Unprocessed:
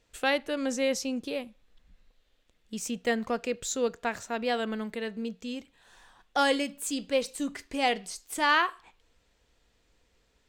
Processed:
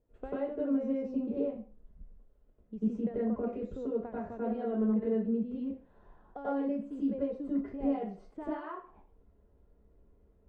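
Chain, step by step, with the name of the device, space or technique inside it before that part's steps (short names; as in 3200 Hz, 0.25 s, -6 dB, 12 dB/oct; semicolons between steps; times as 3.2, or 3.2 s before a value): television next door (compressor 6:1, threshold -32 dBFS, peak gain reduction 12.5 dB; LPF 590 Hz 12 dB/oct; reverb RT60 0.35 s, pre-delay 87 ms, DRR -8.5 dB); gain -4 dB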